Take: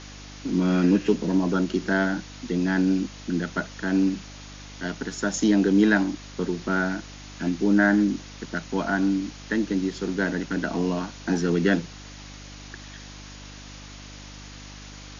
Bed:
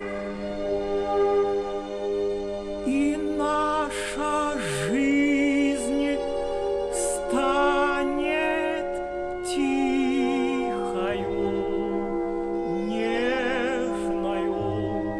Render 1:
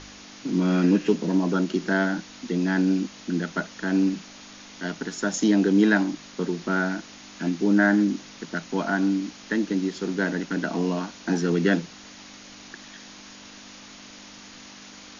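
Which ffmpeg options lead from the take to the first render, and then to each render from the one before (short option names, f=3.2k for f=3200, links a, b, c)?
-af "bandreject=f=50:t=h:w=4,bandreject=f=100:t=h:w=4,bandreject=f=150:t=h:w=4"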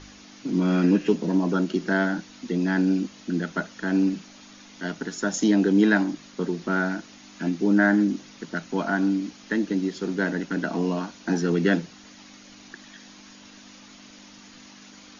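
-af "afftdn=nr=6:nf=-45"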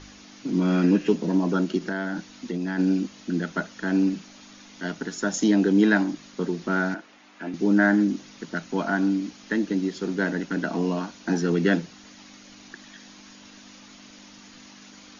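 -filter_complex "[0:a]asplit=3[a][b][c];[a]afade=t=out:st=1.78:d=0.02[d];[b]acompressor=threshold=-24dB:ratio=6:attack=3.2:release=140:knee=1:detection=peak,afade=t=in:st=1.78:d=0.02,afade=t=out:st=2.78:d=0.02[e];[c]afade=t=in:st=2.78:d=0.02[f];[d][e][f]amix=inputs=3:normalize=0,asettb=1/sr,asplit=3[g][h][i];[g]atrim=end=6.944[j];[h]atrim=start=6.94:end=7.54,asetpts=PTS-STARTPTS,afade=t=in:d=0.004:c=qsin,afade=t=out:st=0.596:d=0.004:c=qsin,acrossover=split=340 3000:gain=0.2 1 0.224[k][l][m];[k][l][m]amix=inputs=3:normalize=0[n];[i]atrim=start=7.536[o];[j][n]acrossfade=d=0.004:c1=hsin:c2=qsin[p];[p][o]acrossfade=d=0.004:c1=qsin:c2=hsin"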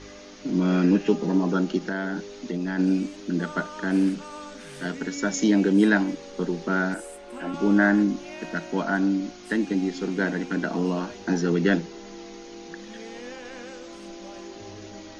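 -filter_complex "[1:a]volume=-15dB[a];[0:a][a]amix=inputs=2:normalize=0"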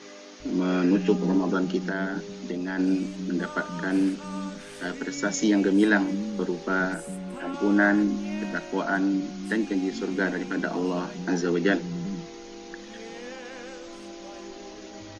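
-filter_complex "[0:a]acrossover=split=180[a][b];[a]adelay=400[c];[c][b]amix=inputs=2:normalize=0"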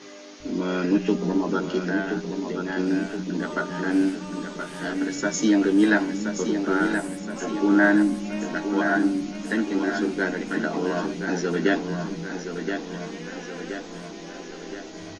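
-filter_complex "[0:a]asplit=2[a][b];[b]adelay=13,volume=-5.5dB[c];[a][c]amix=inputs=2:normalize=0,aecho=1:1:1023|2046|3069|4092|5115|6138|7161:0.447|0.246|0.135|0.0743|0.0409|0.0225|0.0124"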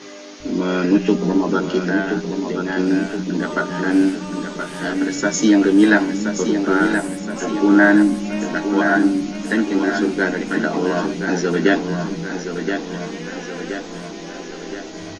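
-af "volume=6dB,alimiter=limit=-1dB:level=0:latency=1"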